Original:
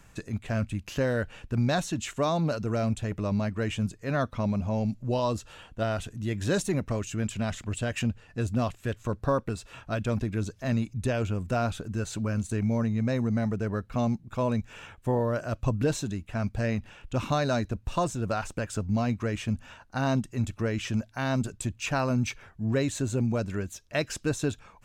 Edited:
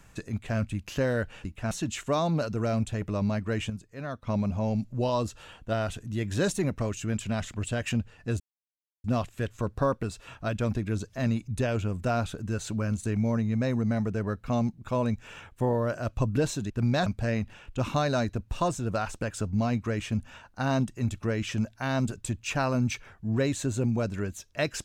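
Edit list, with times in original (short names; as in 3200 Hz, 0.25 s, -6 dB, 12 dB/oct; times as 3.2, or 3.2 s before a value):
1.45–1.81 swap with 16.16–16.42
3.8–4.37 gain -8.5 dB
8.5 insert silence 0.64 s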